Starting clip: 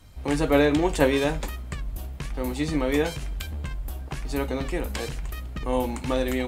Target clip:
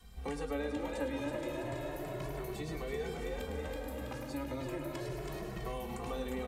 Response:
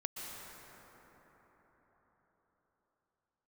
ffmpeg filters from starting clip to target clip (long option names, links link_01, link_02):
-filter_complex "[0:a]asplit=5[link_01][link_02][link_03][link_04][link_05];[link_02]adelay=326,afreqshift=78,volume=-6.5dB[link_06];[link_03]adelay=652,afreqshift=156,volume=-15.1dB[link_07];[link_04]adelay=978,afreqshift=234,volume=-23.8dB[link_08];[link_05]adelay=1304,afreqshift=312,volume=-32.4dB[link_09];[link_01][link_06][link_07][link_08][link_09]amix=inputs=5:normalize=0,asplit=2[link_10][link_11];[1:a]atrim=start_sample=2205,adelay=104[link_12];[link_11][link_12]afir=irnorm=-1:irlink=0,volume=-6.5dB[link_13];[link_10][link_13]amix=inputs=2:normalize=0,acrossover=split=260|1300[link_14][link_15][link_16];[link_14]acompressor=threshold=-39dB:ratio=4[link_17];[link_15]acompressor=threshold=-34dB:ratio=4[link_18];[link_16]acompressor=threshold=-46dB:ratio=4[link_19];[link_17][link_18][link_19]amix=inputs=3:normalize=0,asplit=2[link_20][link_21];[link_21]adelay=2.2,afreqshift=0.33[link_22];[link_20][link_22]amix=inputs=2:normalize=1,volume=-2dB"